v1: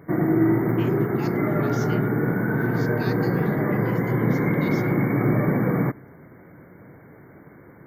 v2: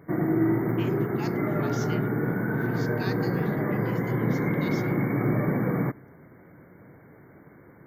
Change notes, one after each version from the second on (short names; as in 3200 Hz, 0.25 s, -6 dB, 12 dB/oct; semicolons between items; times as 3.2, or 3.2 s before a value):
background -4.0 dB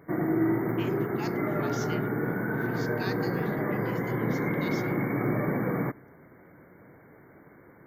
master: add bell 120 Hz -5 dB 2.3 oct